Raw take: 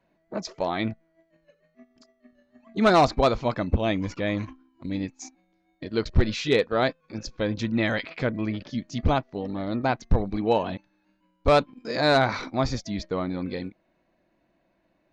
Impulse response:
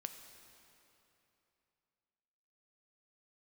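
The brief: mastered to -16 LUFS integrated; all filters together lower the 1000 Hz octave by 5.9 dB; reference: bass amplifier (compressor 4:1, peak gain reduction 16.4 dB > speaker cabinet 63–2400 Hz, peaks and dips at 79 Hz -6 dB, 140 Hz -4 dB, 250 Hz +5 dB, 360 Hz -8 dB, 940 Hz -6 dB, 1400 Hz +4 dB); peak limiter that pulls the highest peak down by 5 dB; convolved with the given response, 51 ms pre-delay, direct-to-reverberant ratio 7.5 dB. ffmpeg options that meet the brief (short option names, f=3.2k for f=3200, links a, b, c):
-filter_complex "[0:a]equalizer=f=1k:t=o:g=-7.5,alimiter=limit=-16dB:level=0:latency=1,asplit=2[a][b];[1:a]atrim=start_sample=2205,adelay=51[c];[b][c]afir=irnorm=-1:irlink=0,volume=-4.5dB[d];[a][d]amix=inputs=2:normalize=0,acompressor=threshold=-38dB:ratio=4,highpass=f=63:w=0.5412,highpass=f=63:w=1.3066,equalizer=f=79:t=q:w=4:g=-6,equalizer=f=140:t=q:w=4:g=-4,equalizer=f=250:t=q:w=4:g=5,equalizer=f=360:t=q:w=4:g=-8,equalizer=f=940:t=q:w=4:g=-6,equalizer=f=1.4k:t=q:w=4:g=4,lowpass=f=2.4k:w=0.5412,lowpass=f=2.4k:w=1.3066,volume=25.5dB"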